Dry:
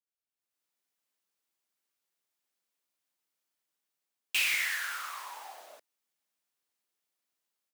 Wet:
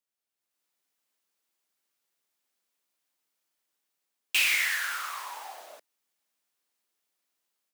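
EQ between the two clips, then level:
high-pass filter 140 Hz
+4.0 dB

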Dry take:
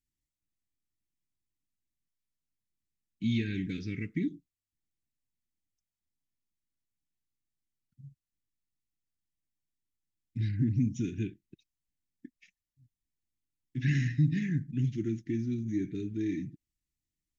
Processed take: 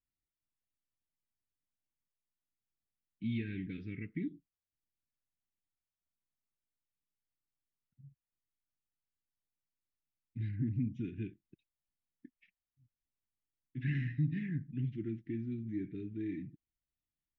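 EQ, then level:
low-pass filter 3,100 Hz 24 dB per octave
−6.5 dB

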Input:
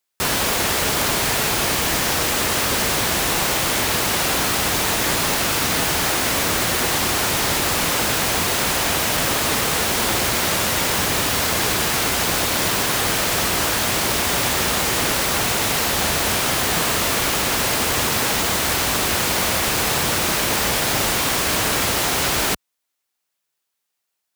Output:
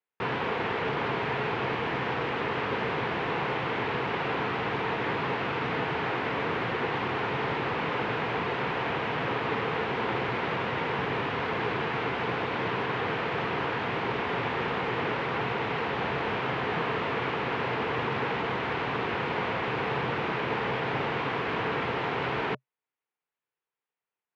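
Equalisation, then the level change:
loudspeaker in its box 120–2,700 Hz, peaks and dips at 130 Hz +8 dB, 440 Hz +7 dB, 950 Hz +4 dB
notch filter 600 Hz, Q 12
−8.0 dB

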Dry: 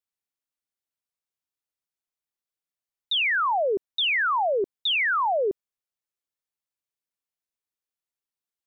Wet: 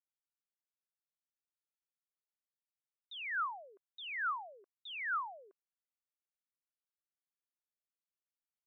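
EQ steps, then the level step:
four-pole ladder band-pass 1,500 Hz, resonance 55%
−6.0 dB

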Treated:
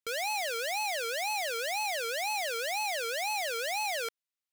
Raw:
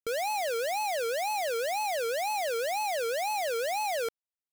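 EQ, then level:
tilt shelving filter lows −9.5 dB, about 1,200 Hz
high-shelf EQ 4,200 Hz −10 dB
0.0 dB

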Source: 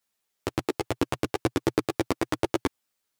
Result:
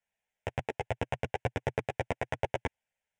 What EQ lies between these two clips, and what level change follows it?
high-frequency loss of the air 99 metres
phaser with its sweep stopped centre 1,200 Hz, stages 6
0.0 dB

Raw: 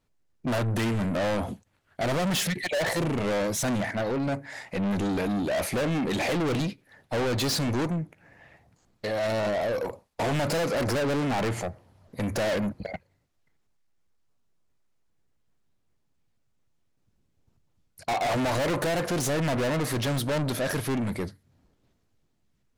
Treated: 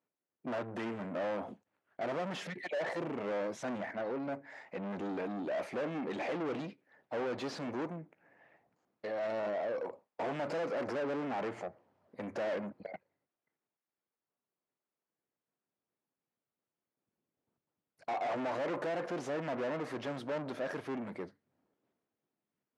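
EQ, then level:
band-pass filter 280–5,800 Hz
high-shelf EQ 2,900 Hz −11.5 dB
parametric band 4,000 Hz −3.5 dB 0.64 octaves
−7.0 dB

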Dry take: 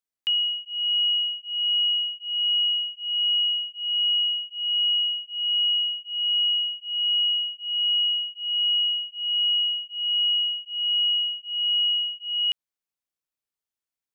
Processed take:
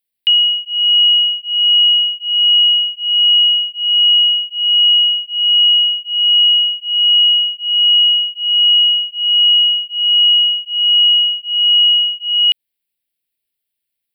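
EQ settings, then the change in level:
high-shelf EQ 2,700 Hz +8.5 dB
phaser with its sweep stopped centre 2,800 Hz, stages 4
+7.5 dB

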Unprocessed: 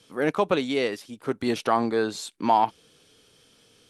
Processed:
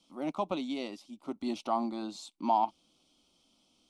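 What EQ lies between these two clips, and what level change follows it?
high-frequency loss of the air 59 metres
phaser with its sweep stopped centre 450 Hz, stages 6
−6.0 dB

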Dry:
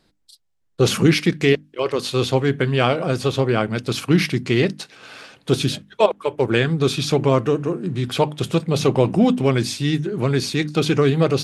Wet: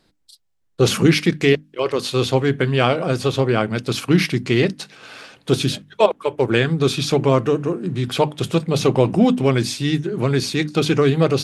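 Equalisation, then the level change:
mains-hum notches 50/100/150/200 Hz
+1.0 dB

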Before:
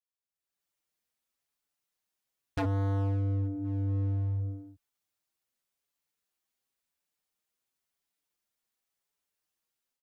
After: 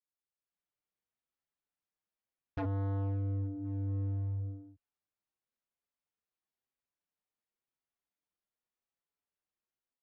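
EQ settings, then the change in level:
high-frequency loss of the air 150 metres
high-shelf EQ 2,700 Hz −8 dB
−4.5 dB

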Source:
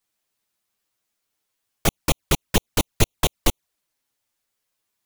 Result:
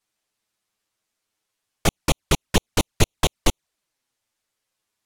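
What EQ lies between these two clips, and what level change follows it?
Bessel low-pass filter 10,000 Hz, order 2
+1.0 dB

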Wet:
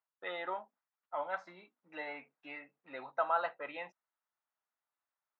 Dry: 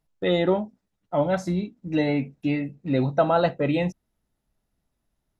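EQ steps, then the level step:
four-pole ladder band-pass 1,400 Hz, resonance 35%
high-frequency loss of the air 64 metres
+4.0 dB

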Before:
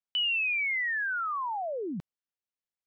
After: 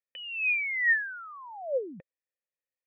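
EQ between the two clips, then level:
formant resonators in series e
high-shelf EQ 2,100 Hz +11.5 dB
+8.5 dB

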